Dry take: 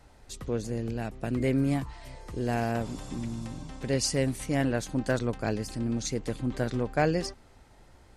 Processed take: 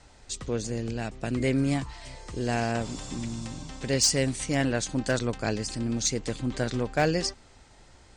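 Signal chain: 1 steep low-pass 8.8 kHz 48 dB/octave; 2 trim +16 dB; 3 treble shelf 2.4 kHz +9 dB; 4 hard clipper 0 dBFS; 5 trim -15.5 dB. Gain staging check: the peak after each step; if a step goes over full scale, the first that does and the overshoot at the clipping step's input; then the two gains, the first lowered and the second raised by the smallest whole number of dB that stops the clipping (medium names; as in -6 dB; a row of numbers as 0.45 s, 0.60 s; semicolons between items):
-13.0 dBFS, +3.0 dBFS, +7.5 dBFS, 0.0 dBFS, -15.5 dBFS; step 2, 7.5 dB; step 2 +8 dB, step 5 -7.5 dB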